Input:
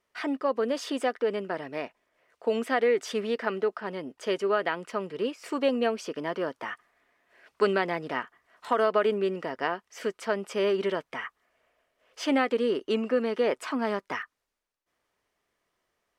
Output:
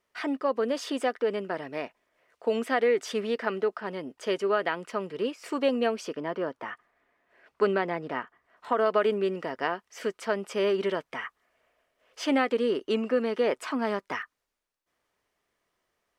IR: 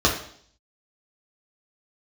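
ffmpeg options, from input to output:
-filter_complex "[0:a]asettb=1/sr,asplit=3[a][b][c];[a]atrim=end=6.154[d];[b]atrim=start=6.15:end=8.86,asetpts=PTS-STARTPTS,afade=t=in:d=0.004:c=qsin,afade=t=out:st=2.706:d=0.004:c=qsin,highshelf=f=3k:g=-10[e];[c]atrim=start=8.856[f];[d][e]acrossfade=d=0.004:c1=hsin:c2=qsin[g];[g][f]acrossfade=d=0.004:c1=qsin:c2=hsin"

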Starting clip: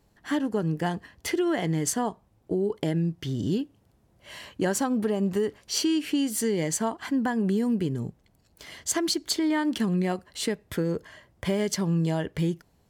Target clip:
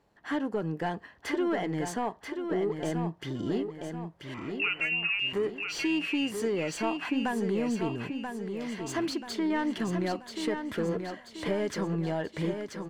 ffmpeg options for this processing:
-filter_complex "[0:a]asplit=2[a][b];[b]highpass=f=720:p=1,volume=16dB,asoftclip=type=tanh:threshold=-12.5dB[c];[a][c]amix=inputs=2:normalize=0,lowpass=f=1.3k:p=1,volume=-6dB,asettb=1/sr,asplit=3[d][e][f];[d]atrim=end=4.344[g];[e]atrim=start=4.34:end=5.33,asetpts=PTS-STARTPTS,afade=t=in:d=0.004:c=qsin,afade=t=out:st=0.986:d=0.004:c=qsin,lowpass=f=2.6k:t=q:w=0.5098,lowpass=f=2.6k:t=q:w=0.6013,lowpass=f=2.6k:t=q:w=0.9,lowpass=f=2.6k:t=q:w=2.563,afreqshift=-3000[h];[f]atrim=start=5.326[i];[g][h]acrossfade=d=0.004:c1=hsin:c2=qsin[j];[j][i]acrossfade=d=0.004:c1=qsin:c2=hsin,aecho=1:1:984|1968|2952|3936|4920:0.473|0.218|0.1|0.0461|0.0212,volume=-6dB"

